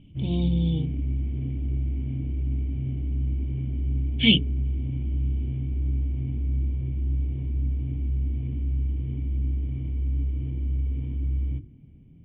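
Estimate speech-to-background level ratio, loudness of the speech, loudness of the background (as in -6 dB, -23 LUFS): 5.0 dB, -24.0 LUFS, -29.0 LUFS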